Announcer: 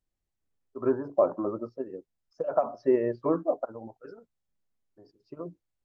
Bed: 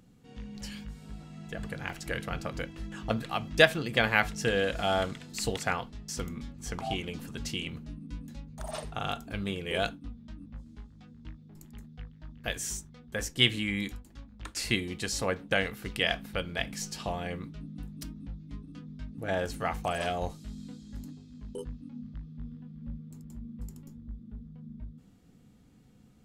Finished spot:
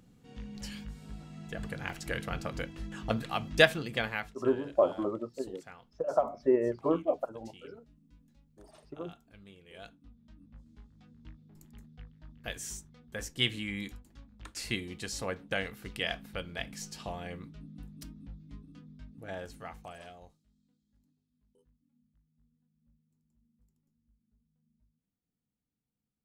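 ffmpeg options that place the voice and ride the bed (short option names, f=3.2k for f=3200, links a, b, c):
-filter_complex "[0:a]adelay=3600,volume=-2dB[a];[1:a]volume=14dB,afade=t=out:st=3.61:d=0.75:silence=0.105925,afade=t=in:st=9.76:d=1.37:silence=0.177828,afade=t=out:st=18.51:d=1.94:silence=0.0562341[b];[a][b]amix=inputs=2:normalize=0"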